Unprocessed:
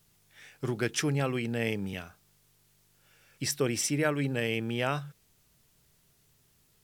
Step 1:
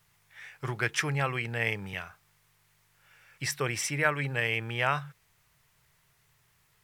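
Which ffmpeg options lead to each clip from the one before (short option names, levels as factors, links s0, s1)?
-af "equalizer=f=125:t=o:w=1:g=5,equalizer=f=250:t=o:w=1:g=-9,equalizer=f=1000:t=o:w=1:g=8,equalizer=f=2000:t=o:w=1:g=9,volume=0.708"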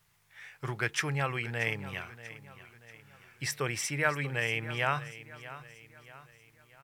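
-af "aecho=1:1:636|1272|1908|2544:0.168|0.0755|0.034|0.0153,volume=0.794"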